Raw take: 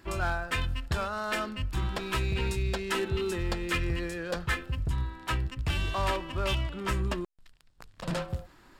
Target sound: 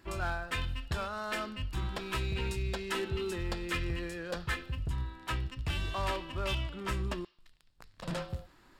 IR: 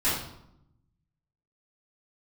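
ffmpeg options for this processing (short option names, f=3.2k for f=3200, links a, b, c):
-filter_complex "[0:a]asplit=2[a][b];[b]bandpass=f=4.6k:t=q:w=1.4:csg=0[c];[1:a]atrim=start_sample=2205,lowpass=3.9k,highshelf=f=2.1k:g=12[d];[c][d]afir=irnorm=-1:irlink=0,volume=-22dB[e];[a][e]amix=inputs=2:normalize=0,volume=-4.5dB"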